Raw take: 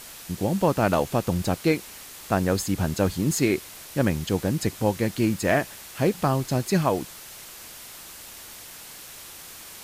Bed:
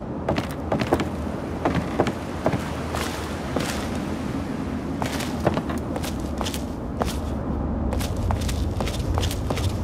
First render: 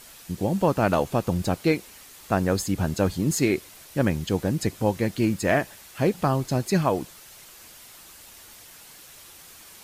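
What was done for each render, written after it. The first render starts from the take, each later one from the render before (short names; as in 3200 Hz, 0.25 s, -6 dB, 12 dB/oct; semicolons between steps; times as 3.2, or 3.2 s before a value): denoiser 6 dB, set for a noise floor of -43 dBFS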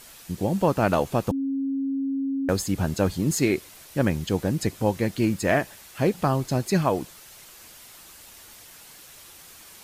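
1.31–2.49 bleep 272 Hz -23.5 dBFS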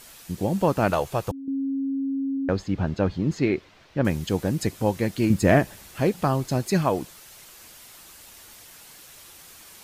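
0.9–1.48 bell 240 Hz -12.5 dB; 2.37–4.05 air absorption 220 m; 5.3–6 low shelf 420 Hz +9.5 dB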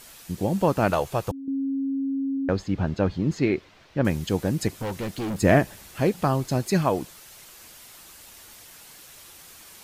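4.68–5.37 overloaded stage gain 26.5 dB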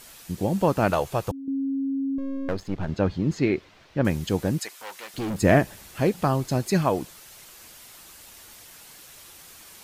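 2.18–2.89 half-wave gain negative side -12 dB; 4.59–5.14 HPF 960 Hz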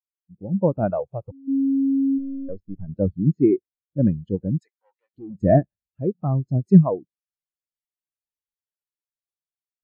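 AGC gain up to 6 dB; spectral expander 2.5:1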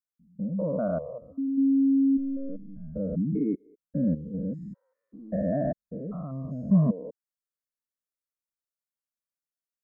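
stepped spectrum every 0.2 s; fixed phaser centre 550 Hz, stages 8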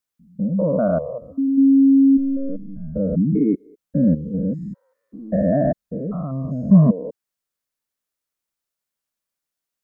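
gain +9 dB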